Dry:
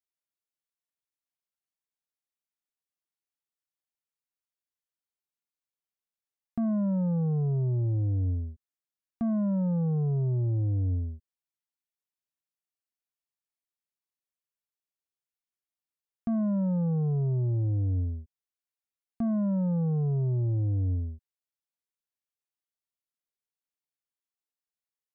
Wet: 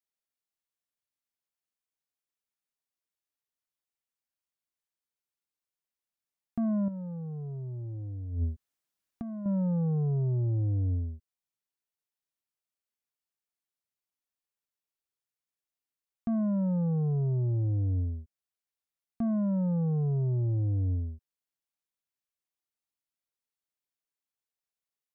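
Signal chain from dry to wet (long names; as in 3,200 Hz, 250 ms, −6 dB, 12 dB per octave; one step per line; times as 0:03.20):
0:06.88–0:09.46: compressor whose output falls as the input rises −32 dBFS, ratio −0.5
level −1 dB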